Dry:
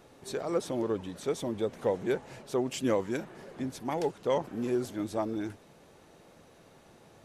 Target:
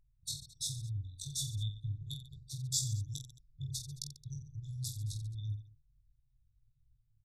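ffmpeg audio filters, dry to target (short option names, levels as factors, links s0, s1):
-af "afftfilt=real='re*(1-between(b*sr/4096,140,3400))':imag='im*(1-between(b*sr/4096,140,3400))':win_size=4096:overlap=0.75,dynaudnorm=f=160:g=5:m=1.41,anlmdn=0.251,aecho=1:1:20|48|87.2|142.1|218.9:0.631|0.398|0.251|0.158|0.1,volume=1.5"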